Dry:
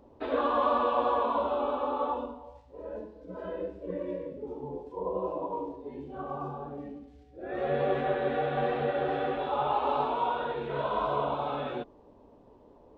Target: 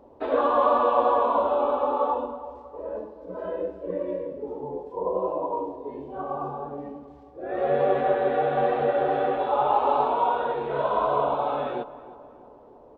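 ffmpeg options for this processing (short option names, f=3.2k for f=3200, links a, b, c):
-filter_complex "[0:a]equalizer=f=680:w=0.54:g=8.5,asplit=2[a][b];[b]adelay=320,lowpass=f=2k:p=1,volume=-16dB,asplit=2[c][d];[d]adelay=320,lowpass=f=2k:p=1,volume=0.53,asplit=2[e][f];[f]adelay=320,lowpass=f=2k:p=1,volume=0.53,asplit=2[g][h];[h]adelay=320,lowpass=f=2k:p=1,volume=0.53,asplit=2[i][j];[j]adelay=320,lowpass=f=2k:p=1,volume=0.53[k];[a][c][e][g][i][k]amix=inputs=6:normalize=0,volume=-1.5dB"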